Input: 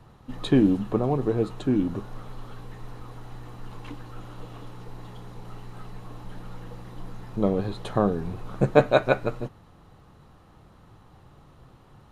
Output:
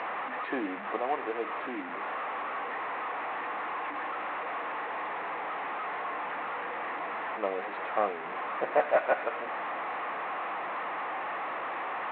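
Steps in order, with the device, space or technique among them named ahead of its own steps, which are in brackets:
digital answering machine (band-pass filter 400–3,200 Hz; linear delta modulator 16 kbit/s, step −28 dBFS; loudspeaker in its box 370–4,200 Hz, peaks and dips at 400 Hz −5 dB, 730 Hz +4 dB, 1,100 Hz +5 dB, 1,900 Hz +5 dB, 3,100 Hz −7 dB)
level −2.5 dB

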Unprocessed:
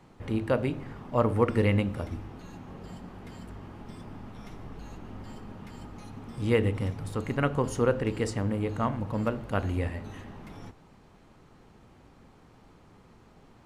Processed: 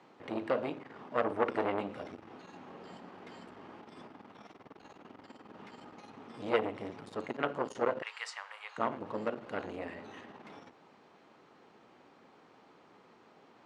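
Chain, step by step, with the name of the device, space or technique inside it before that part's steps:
0:08.02–0:08.78: inverse Chebyshev high-pass filter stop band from 280 Hz, stop band 60 dB
public-address speaker with an overloaded transformer (saturating transformer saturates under 1,100 Hz; band-pass filter 320–5,000 Hz)

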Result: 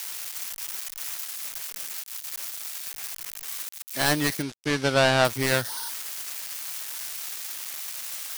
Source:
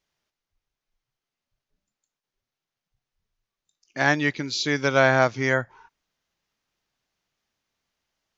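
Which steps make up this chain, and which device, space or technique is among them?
budget class-D amplifier (gap after every zero crossing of 0.2 ms; spike at every zero crossing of −17 dBFS)
0:04.42–0:05.25: low-pass filter 5,900 Hz 12 dB per octave

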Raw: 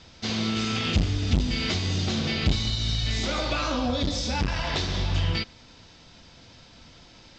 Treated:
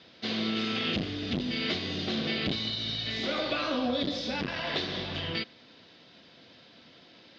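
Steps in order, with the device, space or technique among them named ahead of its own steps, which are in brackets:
kitchen radio (loudspeaker in its box 230–4,200 Hz, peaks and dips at 890 Hz −8 dB, 1,300 Hz −4 dB, 2,400 Hz −3 dB)

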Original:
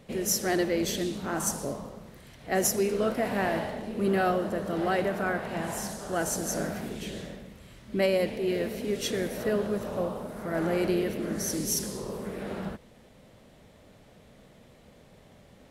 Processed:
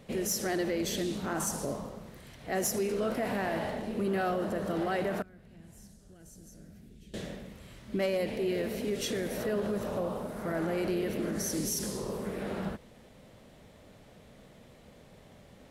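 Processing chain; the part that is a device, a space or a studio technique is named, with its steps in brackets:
clipper into limiter (hard clipping −18.5 dBFS, distortion −29 dB; brickwall limiter −23.5 dBFS, peak gain reduction 5 dB)
0:05.22–0:07.14: guitar amp tone stack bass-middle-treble 10-0-1

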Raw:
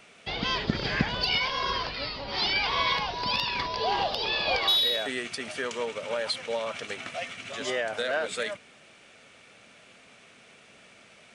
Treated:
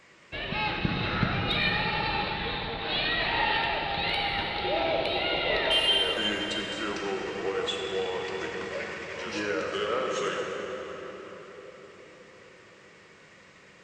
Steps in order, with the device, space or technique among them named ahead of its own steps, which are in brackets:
slowed and reverbed (speed change −18%; convolution reverb RT60 4.9 s, pre-delay 7 ms, DRR −0.5 dB)
level −3 dB

